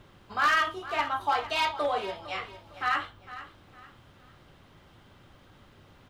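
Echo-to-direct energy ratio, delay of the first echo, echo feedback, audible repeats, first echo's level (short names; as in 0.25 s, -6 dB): -14.5 dB, 0.456 s, 32%, 3, -15.0 dB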